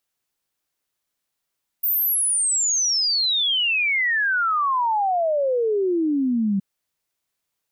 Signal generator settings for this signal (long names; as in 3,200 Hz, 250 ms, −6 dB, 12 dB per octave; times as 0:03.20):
exponential sine sweep 15,000 Hz → 190 Hz 4.77 s −18 dBFS